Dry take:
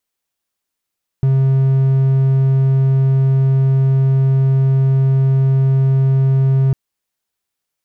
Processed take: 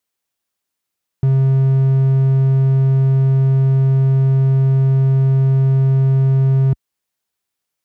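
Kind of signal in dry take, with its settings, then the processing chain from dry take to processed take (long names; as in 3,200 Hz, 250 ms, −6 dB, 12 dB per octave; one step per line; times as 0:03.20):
tone triangle 134 Hz −8 dBFS 5.50 s
high-pass filter 50 Hz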